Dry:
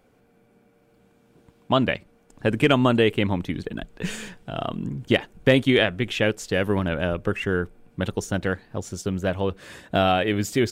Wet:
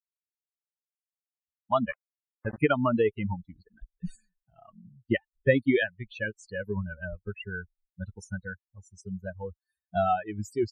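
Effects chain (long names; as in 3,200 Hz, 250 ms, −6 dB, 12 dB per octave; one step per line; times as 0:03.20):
spectral dynamics exaggerated over time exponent 3
0:01.89–0:02.58: centre clipping without the shift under −37 dBFS
high shelf with overshoot 2,400 Hz −7.5 dB, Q 1.5
spectral peaks only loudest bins 64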